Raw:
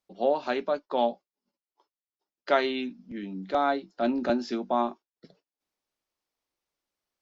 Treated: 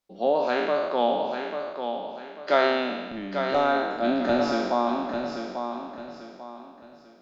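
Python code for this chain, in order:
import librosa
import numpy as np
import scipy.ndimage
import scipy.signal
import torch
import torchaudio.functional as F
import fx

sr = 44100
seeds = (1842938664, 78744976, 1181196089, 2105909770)

y = fx.spec_trails(x, sr, decay_s=1.42)
y = fx.echo_feedback(y, sr, ms=843, feedback_pct=33, wet_db=-7.0)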